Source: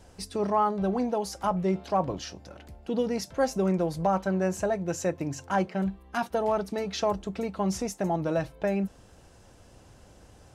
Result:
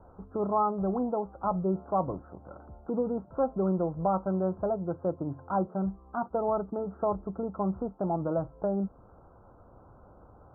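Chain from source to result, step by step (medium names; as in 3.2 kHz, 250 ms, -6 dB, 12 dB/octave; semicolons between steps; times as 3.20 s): steep low-pass 1.4 kHz 96 dB/octave; tape noise reduction on one side only encoder only; trim -2 dB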